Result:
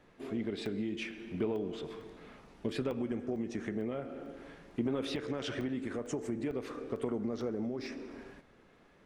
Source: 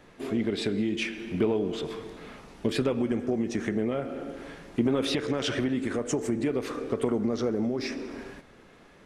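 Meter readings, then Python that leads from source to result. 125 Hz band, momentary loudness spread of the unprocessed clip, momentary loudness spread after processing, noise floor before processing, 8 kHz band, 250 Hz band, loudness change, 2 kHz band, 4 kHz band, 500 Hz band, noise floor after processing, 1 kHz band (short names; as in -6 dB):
-8.0 dB, 12 LU, 13 LU, -54 dBFS, -12.0 dB, -8.0 dB, -8.0 dB, -9.0 dB, -10.0 dB, -8.0 dB, -62 dBFS, -8.0 dB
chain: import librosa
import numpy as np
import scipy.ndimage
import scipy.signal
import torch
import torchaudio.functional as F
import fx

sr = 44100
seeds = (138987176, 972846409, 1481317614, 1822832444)

y = fx.high_shelf(x, sr, hz=4400.0, db=-5.5)
y = fx.buffer_crackle(y, sr, first_s=0.66, period_s=0.45, block=64, kind='zero')
y = y * 10.0 ** (-8.0 / 20.0)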